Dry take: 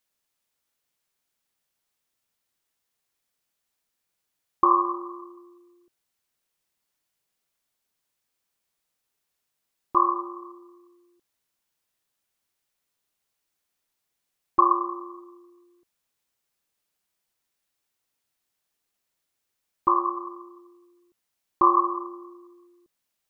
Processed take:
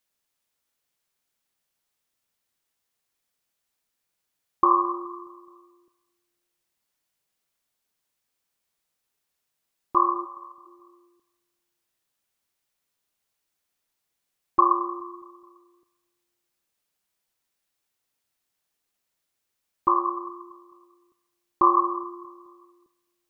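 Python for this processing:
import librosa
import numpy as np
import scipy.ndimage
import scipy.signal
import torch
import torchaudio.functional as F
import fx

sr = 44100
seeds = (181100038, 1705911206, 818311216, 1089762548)

y = fx.ellip_highpass(x, sr, hz=510.0, order=4, stop_db=40, at=(10.24, 10.65), fade=0.02)
y = fx.echo_feedback(y, sr, ms=212, feedback_pct=57, wet_db=-23.5)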